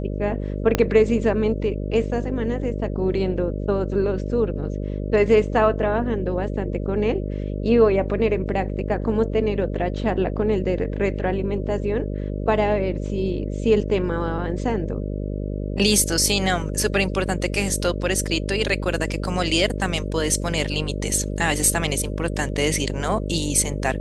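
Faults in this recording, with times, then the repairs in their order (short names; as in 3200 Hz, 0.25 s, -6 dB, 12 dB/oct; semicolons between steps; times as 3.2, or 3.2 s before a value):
buzz 50 Hz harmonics 12 -27 dBFS
0.75 pop -4 dBFS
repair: de-click; de-hum 50 Hz, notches 12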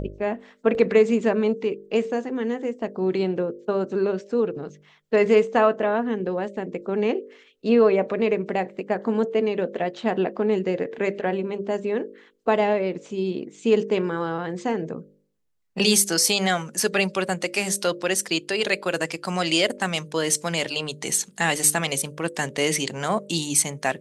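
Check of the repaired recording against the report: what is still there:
0.75 pop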